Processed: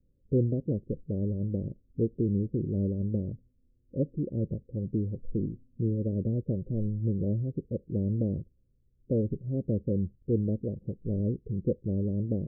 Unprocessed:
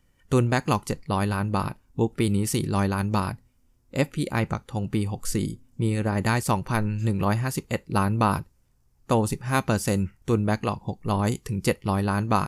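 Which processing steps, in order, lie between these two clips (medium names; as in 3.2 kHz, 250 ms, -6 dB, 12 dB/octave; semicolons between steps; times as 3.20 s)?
steep low-pass 550 Hz 72 dB/octave; trim -4 dB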